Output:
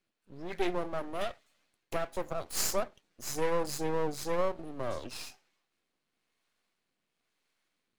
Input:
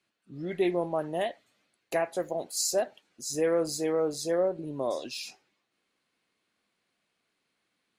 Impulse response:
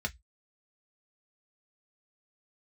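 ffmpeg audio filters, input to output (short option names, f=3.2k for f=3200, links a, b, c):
-filter_complex "[0:a]acrossover=split=490[a][b];[a]aeval=exprs='val(0)*(1-0.5/2+0.5/2*cos(2*PI*1*n/s))':c=same[c];[b]aeval=exprs='val(0)*(1-0.5/2-0.5/2*cos(2*PI*1*n/s))':c=same[d];[c][d]amix=inputs=2:normalize=0,aeval=exprs='max(val(0),0)':c=same,volume=3dB"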